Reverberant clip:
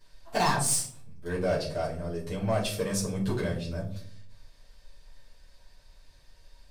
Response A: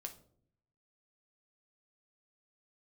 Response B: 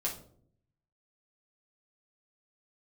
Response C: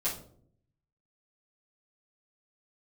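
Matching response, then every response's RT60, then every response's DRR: C; 0.60, 0.60, 0.60 s; 4.0, -3.5, -9.0 dB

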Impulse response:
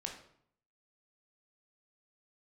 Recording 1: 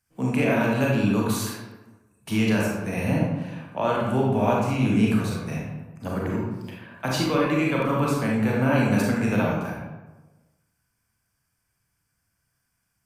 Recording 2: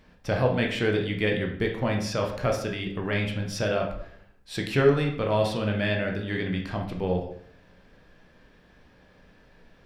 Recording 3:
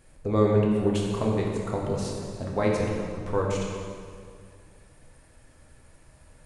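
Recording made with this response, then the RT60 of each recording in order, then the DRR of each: 2; 1.2, 0.65, 2.2 s; -3.5, 1.0, -2.5 dB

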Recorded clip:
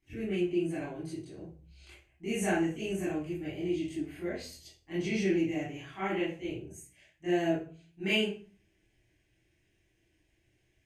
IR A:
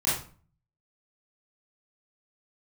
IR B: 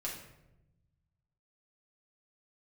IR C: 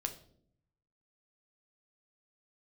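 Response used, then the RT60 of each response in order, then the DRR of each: A; 0.40, 0.90, 0.65 s; -11.0, -4.5, 5.0 dB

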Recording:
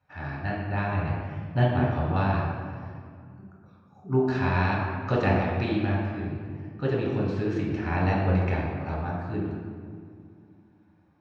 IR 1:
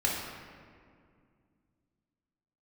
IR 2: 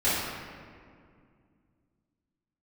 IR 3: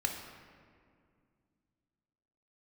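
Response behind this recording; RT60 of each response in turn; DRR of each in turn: 1; 2.2, 2.2, 2.2 s; -4.0, -12.5, 2.0 dB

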